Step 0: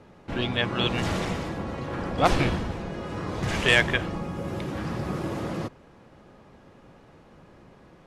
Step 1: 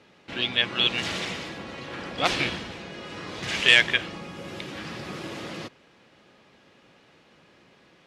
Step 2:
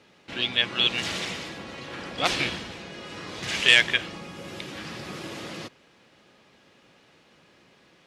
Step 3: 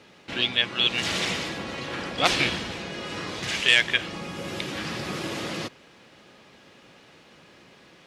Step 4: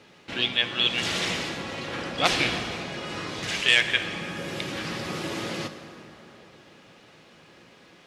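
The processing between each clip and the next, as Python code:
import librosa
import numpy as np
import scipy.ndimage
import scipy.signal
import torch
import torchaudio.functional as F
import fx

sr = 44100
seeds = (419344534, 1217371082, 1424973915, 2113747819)

y1 = fx.weighting(x, sr, curve='D')
y1 = y1 * librosa.db_to_amplitude(-5.0)
y2 = fx.high_shelf(y1, sr, hz=4600.0, db=5.5)
y2 = y2 * librosa.db_to_amplitude(-1.5)
y3 = fx.rider(y2, sr, range_db=4, speed_s=0.5)
y3 = y3 * librosa.db_to_amplitude(1.5)
y4 = fx.rev_plate(y3, sr, seeds[0], rt60_s=3.6, hf_ratio=0.55, predelay_ms=0, drr_db=8.0)
y4 = y4 * librosa.db_to_amplitude(-1.0)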